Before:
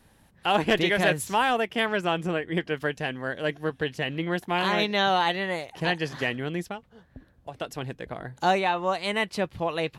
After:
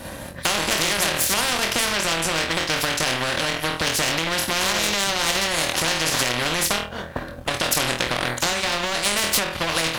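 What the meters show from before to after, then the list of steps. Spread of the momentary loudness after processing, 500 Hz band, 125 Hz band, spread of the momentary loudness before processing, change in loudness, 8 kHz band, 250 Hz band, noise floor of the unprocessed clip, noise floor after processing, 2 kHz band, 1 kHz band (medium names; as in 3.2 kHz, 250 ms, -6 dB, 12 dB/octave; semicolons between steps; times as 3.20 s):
4 LU, 0.0 dB, +1.5 dB, 13 LU, +5.5 dB, +21.5 dB, 0.0 dB, -60 dBFS, -35 dBFS, +5.5 dB, +1.0 dB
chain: peaking EQ 560 Hz +14 dB 0.22 oct; comb of notches 430 Hz; on a send: flutter echo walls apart 4.2 m, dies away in 0.27 s; on the sum: compression 8:1, threshold -28 dBFS, peak gain reduction 18.5 dB; power-law waveshaper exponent 1.4; loudness maximiser +29 dB; spectrum-flattening compressor 4:1; trim -1 dB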